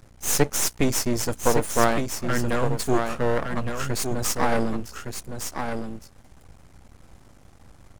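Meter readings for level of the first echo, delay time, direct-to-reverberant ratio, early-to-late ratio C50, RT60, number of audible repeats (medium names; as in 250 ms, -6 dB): -6.5 dB, 1162 ms, no reverb, no reverb, no reverb, 1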